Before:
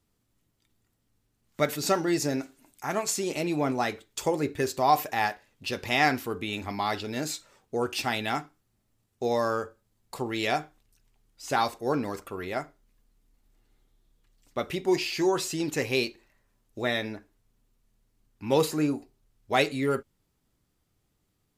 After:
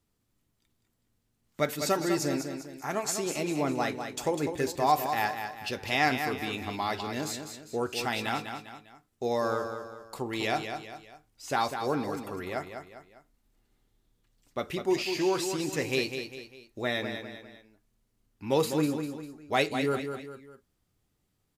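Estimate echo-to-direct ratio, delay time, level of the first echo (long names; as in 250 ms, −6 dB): −6.5 dB, 200 ms, −7.5 dB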